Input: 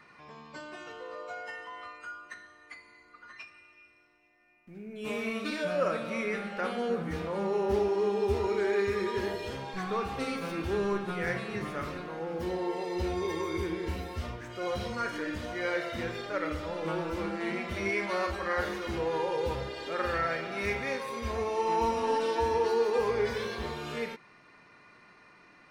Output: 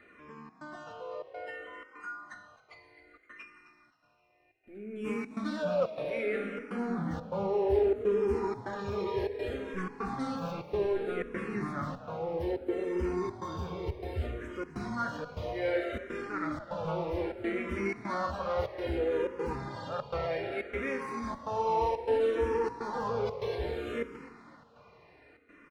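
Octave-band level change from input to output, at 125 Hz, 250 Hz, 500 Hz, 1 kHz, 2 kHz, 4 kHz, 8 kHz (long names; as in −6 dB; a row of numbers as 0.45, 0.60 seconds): −0.5 dB, −0.5 dB, −1.0 dB, −2.5 dB, −5.0 dB, −7.0 dB, can't be measured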